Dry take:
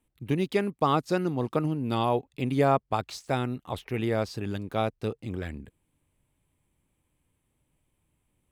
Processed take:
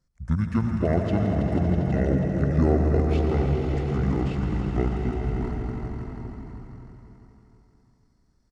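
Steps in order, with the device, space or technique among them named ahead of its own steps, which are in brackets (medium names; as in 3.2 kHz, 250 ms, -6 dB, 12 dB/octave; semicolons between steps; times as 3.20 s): echo with a slow build-up 81 ms, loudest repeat 5, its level -9.5 dB; monster voice (pitch shift -10 st; bass shelf 230 Hz +6 dB; reverberation RT60 2.1 s, pre-delay 93 ms, DRR 6.5 dB); trim -2 dB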